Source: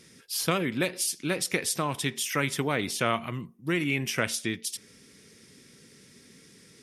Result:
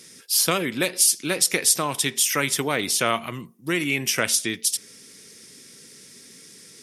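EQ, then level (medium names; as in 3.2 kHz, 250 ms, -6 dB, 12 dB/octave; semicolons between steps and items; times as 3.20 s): high-pass 83 Hz; tone controls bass -5 dB, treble +8 dB; +4.0 dB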